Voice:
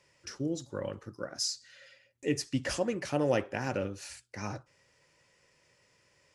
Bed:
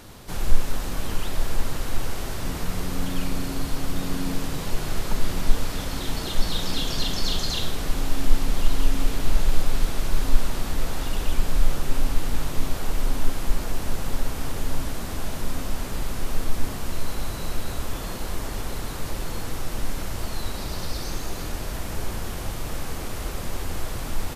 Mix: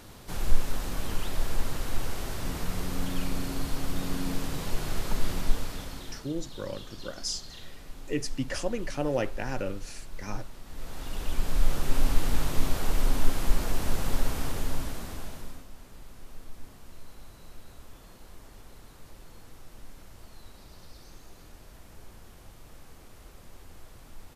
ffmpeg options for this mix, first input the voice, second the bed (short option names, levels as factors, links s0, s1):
-filter_complex "[0:a]adelay=5850,volume=0.944[s0];[1:a]volume=5.01,afade=t=out:st=5.3:d=0.99:silence=0.177828,afade=t=in:st=10.65:d=1.44:silence=0.125893,afade=t=out:st=14.27:d=1.39:silence=0.11885[s1];[s0][s1]amix=inputs=2:normalize=0"